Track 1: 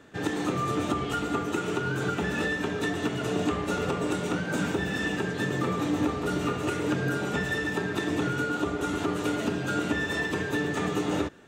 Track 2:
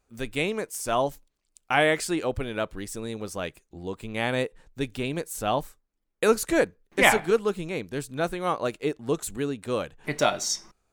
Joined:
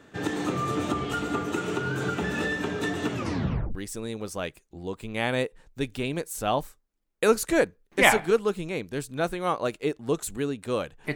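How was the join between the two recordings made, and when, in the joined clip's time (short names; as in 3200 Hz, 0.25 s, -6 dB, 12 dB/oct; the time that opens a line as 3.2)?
track 1
3.12 tape stop 0.63 s
3.75 switch to track 2 from 2.75 s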